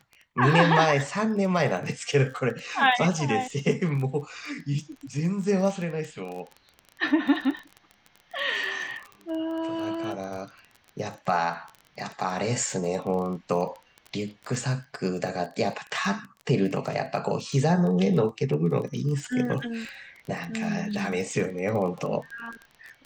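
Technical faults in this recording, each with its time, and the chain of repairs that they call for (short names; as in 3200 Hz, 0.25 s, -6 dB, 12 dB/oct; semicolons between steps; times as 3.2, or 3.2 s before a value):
crackle 20/s -32 dBFS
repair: de-click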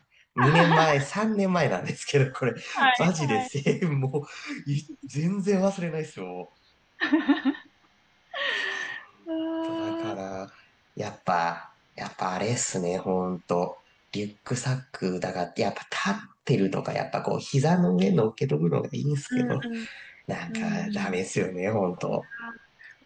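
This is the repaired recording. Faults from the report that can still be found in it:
none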